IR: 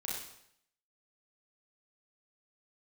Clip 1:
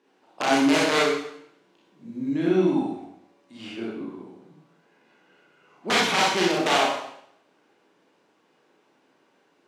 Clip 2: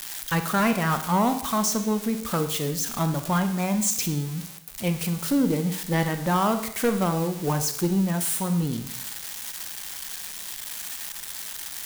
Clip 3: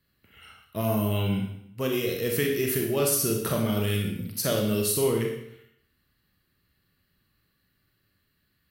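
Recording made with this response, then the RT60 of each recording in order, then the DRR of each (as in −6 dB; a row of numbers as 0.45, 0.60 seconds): 1; 0.70, 0.70, 0.70 seconds; −5.5, 8.0, 0.5 decibels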